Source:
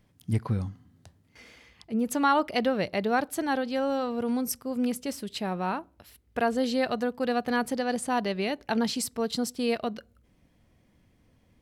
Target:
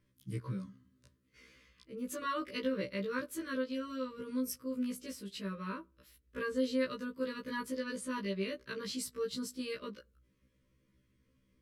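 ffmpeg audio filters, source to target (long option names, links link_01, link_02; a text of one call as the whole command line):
ffmpeg -i in.wav -af "asuperstop=centerf=770:order=12:qfactor=2.1,afftfilt=real='re*1.73*eq(mod(b,3),0)':imag='im*1.73*eq(mod(b,3),0)':win_size=2048:overlap=0.75,volume=-6.5dB" out.wav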